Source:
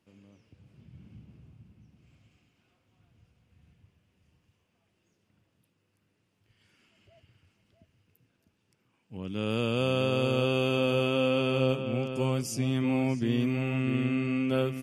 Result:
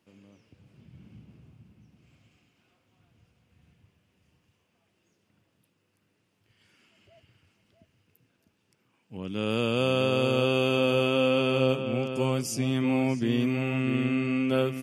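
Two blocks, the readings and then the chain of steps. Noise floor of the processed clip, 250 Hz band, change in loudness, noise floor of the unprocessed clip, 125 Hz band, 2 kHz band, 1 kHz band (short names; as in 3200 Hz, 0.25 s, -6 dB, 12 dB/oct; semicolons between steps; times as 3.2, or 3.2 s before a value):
-73 dBFS, +2.0 dB, +2.0 dB, -75 dBFS, 0.0 dB, +3.0 dB, +3.0 dB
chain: low shelf 93 Hz -9 dB; gain +3 dB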